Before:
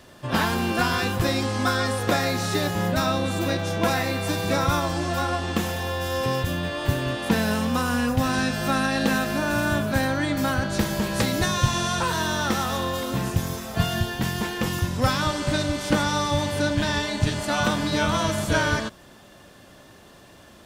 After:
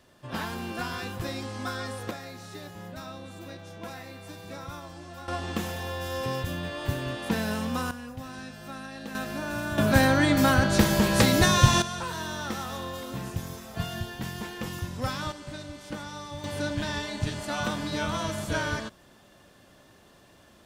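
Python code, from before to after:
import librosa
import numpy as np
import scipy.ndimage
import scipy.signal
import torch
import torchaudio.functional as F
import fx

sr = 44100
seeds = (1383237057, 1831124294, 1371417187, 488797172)

y = fx.gain(x, sr, db=fx.steps((0.0, -10.5), (2.11, -17.5), (5.28, -6.0), (7.91, -17.0), (9.15, -8.5), (9.78, 3.0), (11.82, -9.0), (15.32, -15.5), (16.44, -7.0)))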